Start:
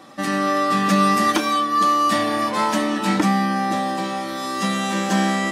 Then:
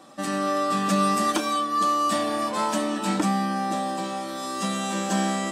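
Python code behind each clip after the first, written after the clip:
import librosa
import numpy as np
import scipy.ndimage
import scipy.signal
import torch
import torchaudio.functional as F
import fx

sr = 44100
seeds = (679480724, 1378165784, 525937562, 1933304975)

y = fx.graphic_eq_31(x, sr, hz=(100, 630, 2000, 8000), db=(-10, 3, -6, 8))
y = y * 10.0 ** (-5.0 / 20.0)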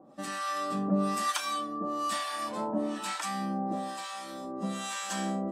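y = fx.harmonic_tremolo(x, sr, hz=1.1, depth_pct=100, crossover_hz=860.0)
y = y * 10.0 ** (-2.5 / 20.0)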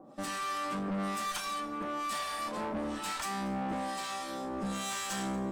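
y = fx.rider(x, sr, range_db=10, speed_s=2.0)
y = fx.tube_stage(y, sr, drive_db=34.0, bias=0.6)
y = fx.echo_feedback(y, sr, ms=234, feedback_pct=56, wet_db=-22)
y = y * 10.0 ** (2.5 / 20.0)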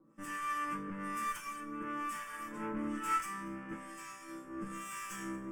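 y = fx.fixed_phaser(x, sr, hz=1700.0, stages=4)
y = fx.resonator_bank(y, sr, root=45, chord='sus4', decay_s=0.21)
y = fx.upward_expand(y, sr, threshold_db=-58.0, expansion=1.5)
y = y * 10.0 ** (12.0 / 20.0)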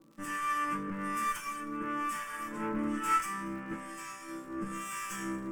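y = fx.dmg_crackle(x, sr, seeds[0], per_s=120.0, level_db=-55.0)
y = y * 10.0 ** (4.5 / 20.0)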